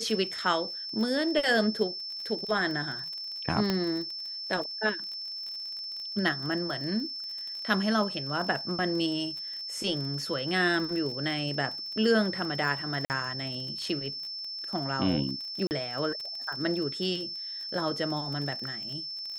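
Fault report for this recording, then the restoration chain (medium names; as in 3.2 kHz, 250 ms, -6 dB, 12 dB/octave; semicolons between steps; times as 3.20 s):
crackle 27 per s -35 dBFS
whine 5.3 kHz -35 dBFS
3.70 s: pop -14 dBFS
13.05–13.10 s: dropout 49 ms
15.67–15.71 s: dropout 39 ms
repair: de-click; band-stop 5.3 kHz, Q 30; interpolate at 13.05 s, 49 ms; interpolate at 15.67 s, 39 ms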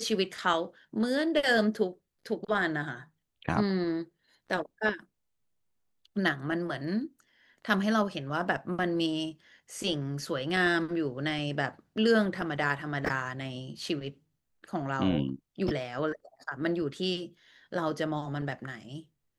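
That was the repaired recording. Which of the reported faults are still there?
nothing left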